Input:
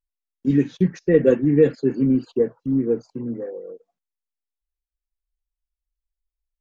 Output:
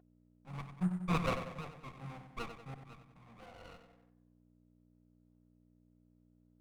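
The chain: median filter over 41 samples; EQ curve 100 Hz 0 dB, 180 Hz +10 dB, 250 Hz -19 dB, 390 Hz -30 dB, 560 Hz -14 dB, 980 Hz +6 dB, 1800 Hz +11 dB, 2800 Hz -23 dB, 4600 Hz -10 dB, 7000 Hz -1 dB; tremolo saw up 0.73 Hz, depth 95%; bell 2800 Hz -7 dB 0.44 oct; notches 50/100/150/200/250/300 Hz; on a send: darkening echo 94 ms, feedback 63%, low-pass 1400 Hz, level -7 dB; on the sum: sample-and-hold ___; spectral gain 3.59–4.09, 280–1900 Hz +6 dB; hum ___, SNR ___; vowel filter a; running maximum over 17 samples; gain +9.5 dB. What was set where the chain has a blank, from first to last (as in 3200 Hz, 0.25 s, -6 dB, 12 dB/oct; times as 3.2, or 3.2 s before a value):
5×, 60 Hz, 19 dB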